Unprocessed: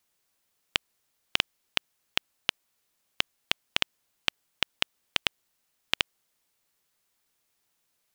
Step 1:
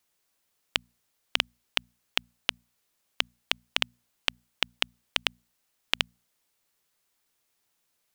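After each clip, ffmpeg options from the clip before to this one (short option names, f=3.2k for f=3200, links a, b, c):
-af "bandreject=f=60:t=h:w=6,bandreject=f=120:t=h:w=6,bandreject=f=180:t=h:w=6,bandreject=f=240:t=h:w=6"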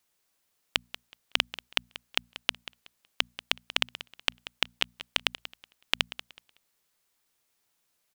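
-af "aecho=1:1:186|372|558:0.178|0.0427|0.0102"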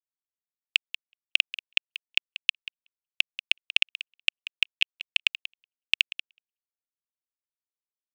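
-af "anlmdn=0.251,highpass=f=2.6k:t=q:w=6.4,volume=-6dB"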